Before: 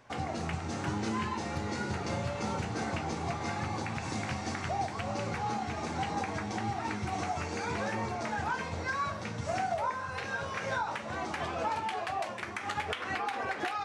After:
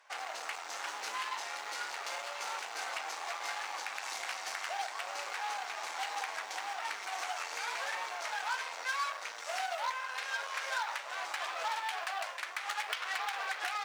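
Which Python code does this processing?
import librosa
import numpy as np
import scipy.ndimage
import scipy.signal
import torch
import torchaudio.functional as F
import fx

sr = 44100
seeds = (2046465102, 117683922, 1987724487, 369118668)

y = fx.cheby_harmonics(x, sr, harmonics=(8,), levels_db=(-17,), full_scale_db=-21.0)
y = fx.mod_noise(y, sr, seeds[0], snr_db=34)
y = scipy.signal.sosfilt(scipy.signal.bessel(4, 980.0, 'highpass', norm='mag', fs=sr, output='sos'), y)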